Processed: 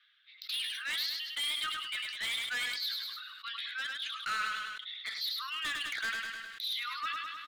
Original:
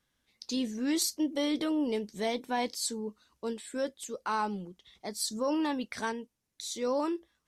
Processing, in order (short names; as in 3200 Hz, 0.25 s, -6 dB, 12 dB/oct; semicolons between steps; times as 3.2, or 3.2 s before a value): steep high-pass 1200 Hz 96 dB/oct; reverb removal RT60 1 s; elliptic low-pass 3700 Hz, stop band 60 dB; tilt +3.5 dB/oct; in parallel at -1.5 dB: compressor, threshold -53 dBFS, peak gain reduction 19 dB; on the sum: hard clip -37 dBFS, distortion -8 dB; feedback echo 0.103 s, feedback 38%, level -9 dB; two-slope reverb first 0.21 s, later 1.7 s, from -18 dB, DRR 14.5 dB; sustainer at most 30 dB/s; gain +5 dB